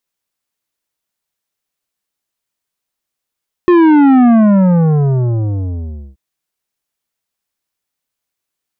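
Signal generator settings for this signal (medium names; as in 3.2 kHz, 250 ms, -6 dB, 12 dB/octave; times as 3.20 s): sub drop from 360 Hz, over 2.48 s, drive 11 dB, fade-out 1.89 s, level -6 dB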